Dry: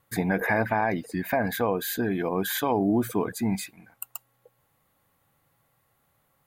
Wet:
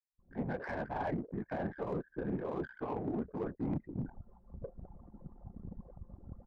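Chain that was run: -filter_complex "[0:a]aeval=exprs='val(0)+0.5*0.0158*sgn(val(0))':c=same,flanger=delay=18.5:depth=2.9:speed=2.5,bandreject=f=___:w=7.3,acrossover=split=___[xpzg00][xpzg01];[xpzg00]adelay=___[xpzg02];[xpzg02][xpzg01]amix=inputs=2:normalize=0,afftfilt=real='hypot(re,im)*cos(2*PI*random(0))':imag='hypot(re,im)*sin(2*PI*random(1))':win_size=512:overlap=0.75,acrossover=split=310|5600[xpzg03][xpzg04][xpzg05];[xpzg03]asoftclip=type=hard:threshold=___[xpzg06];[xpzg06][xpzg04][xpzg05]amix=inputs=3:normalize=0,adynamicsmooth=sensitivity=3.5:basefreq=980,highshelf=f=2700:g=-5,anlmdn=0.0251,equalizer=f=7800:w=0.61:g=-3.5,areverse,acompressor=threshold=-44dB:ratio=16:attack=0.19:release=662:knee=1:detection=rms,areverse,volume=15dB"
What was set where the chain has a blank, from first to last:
2700, 4300, 190, -32.5dB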